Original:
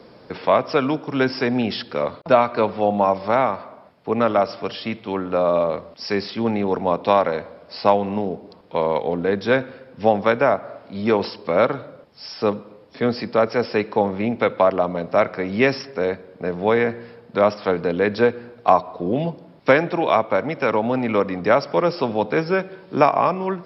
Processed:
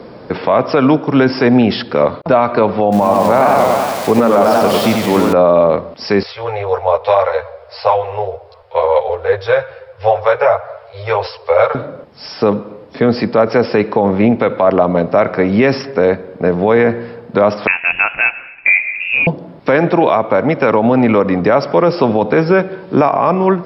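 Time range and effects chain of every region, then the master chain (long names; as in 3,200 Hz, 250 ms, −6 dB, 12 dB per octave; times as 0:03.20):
0:02.92–0:05.33: spike at every zero crossing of −18.5 dBFS + high-shelf EQ 5,000 Hz −6 dB + feedback echo with a swinging delay time 95 ms, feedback 69%, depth 165 cents, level −4 dB
0:06.23–0:11.75: Chebyshev band-stop filter 110–490 Hz, order 3 + string-ensemble chorus
0:17.67–0:19.27: high-pass with resonance 720 Hz, resonance Q 2.6 + voice inversion scrambler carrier 3,100 Hz
whole clip: high-shelf EQ 2,700 Hz −9.5 dB; boost into a limiter +13.5 dB; level −1 dB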